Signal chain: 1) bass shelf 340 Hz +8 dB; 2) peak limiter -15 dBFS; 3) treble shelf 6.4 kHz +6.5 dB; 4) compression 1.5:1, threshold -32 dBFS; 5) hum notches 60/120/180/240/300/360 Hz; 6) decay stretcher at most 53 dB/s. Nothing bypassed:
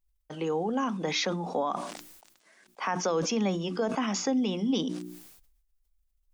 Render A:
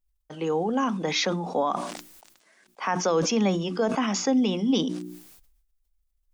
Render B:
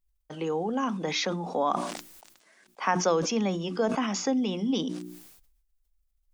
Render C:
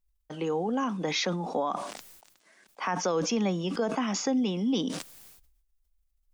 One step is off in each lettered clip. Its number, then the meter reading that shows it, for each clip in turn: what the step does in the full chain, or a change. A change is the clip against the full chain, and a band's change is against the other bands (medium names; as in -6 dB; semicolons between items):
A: 4, mean gain reduction 3.0 dB; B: 2, crest factor change +4.5 dB; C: 5, momentary loudness spread change -2 LU